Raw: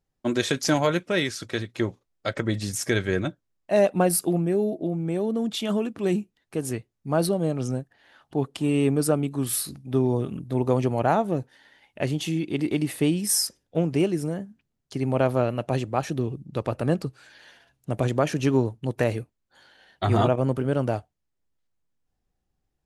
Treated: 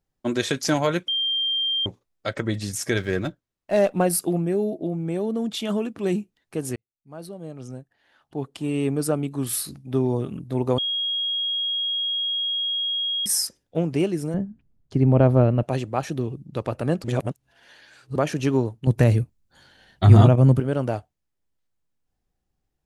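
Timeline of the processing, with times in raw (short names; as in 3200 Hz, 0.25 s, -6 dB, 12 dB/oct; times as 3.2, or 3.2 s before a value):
1.08–1.86 bleep 3180 Hz -21 dBFS
2.97–4.02 running maximum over 3 samples
6.76–9.47 fade in
10.78–13.26 bleep 3280 Hz -22.5 dBFS
14.34–15.63 tilt -3.5 dB/oct
17.04–18.16 reverse
18.87–20.6 tone controls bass +13 dB, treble +4 dB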